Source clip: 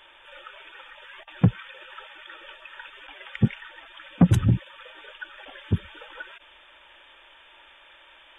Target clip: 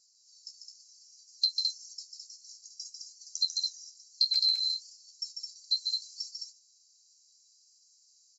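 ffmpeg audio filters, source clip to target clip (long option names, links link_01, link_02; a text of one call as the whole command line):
ffmpeg -i in.wav -filter_complex "[0:a]afftfilt=real='real(if(lt(b,736),b+184*(1-2*mod(floor(b/184),2)),b),0)':imag='imag(if(lt(b,736),b+184*(1-2*mod(floor(b/184),2)),b),0)':win_size=2048:overlap=0.75,agate=range=-14dB:threshold=-41dB:ratio=16:detection=peak,lowpass=7100,acompressor=threshold=-28dB:ratio=6,flanger=delay=9.3:depth=8.9:regen=44:speed=0.63:shape=triangular,asplit=2[link_01][link_02];[link_02]aecho=0:1:145.8|212.8:0.562|0.631[link_03];[link_01][link_03]amix=inputs=2:normalize=0,volume=6dB" out.wav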